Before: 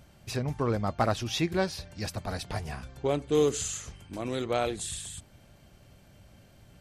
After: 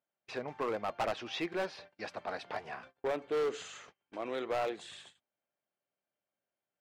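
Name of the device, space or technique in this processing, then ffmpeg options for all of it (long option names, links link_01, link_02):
walkie-talkie: -af "highpass=450,lowpass=2500,asoftclip=type=hard:threshold=-28.5dB,agate=range=-29dB:threshold=-52dB:ratio=16:detection=peak"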